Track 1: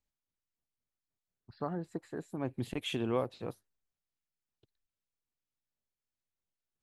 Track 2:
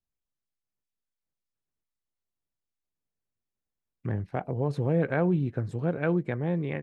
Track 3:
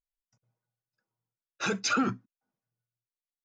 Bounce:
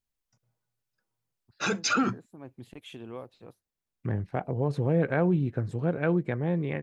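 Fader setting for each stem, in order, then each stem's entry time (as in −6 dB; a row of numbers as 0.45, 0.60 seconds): −9.0, +0.5, +1.5 decibels; 0.00, 0.00, 0.00 seconds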